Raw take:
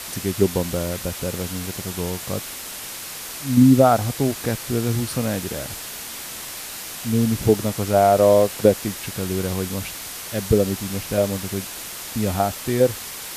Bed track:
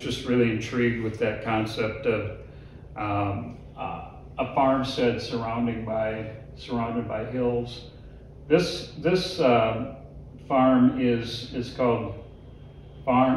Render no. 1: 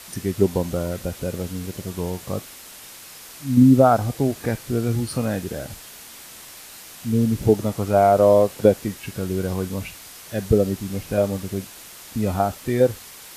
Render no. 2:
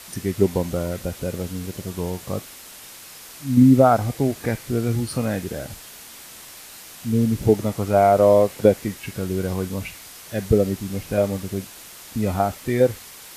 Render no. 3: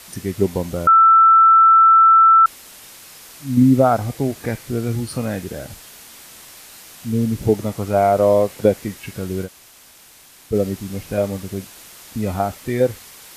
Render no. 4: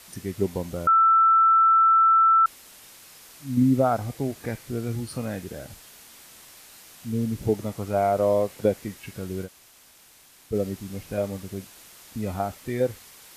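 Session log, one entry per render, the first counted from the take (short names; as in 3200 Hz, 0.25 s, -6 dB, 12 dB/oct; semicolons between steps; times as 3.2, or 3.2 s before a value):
noise print and reduce 8 dB
dynamic EQ 2100 Hz, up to +5 dB, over -48 dBFS, Q 4.4
0.87–2.46 bleep 1330 Hz -7 dBFS; 9.46–10.53 room tone, crossfade 0.06 s
gain -7 dB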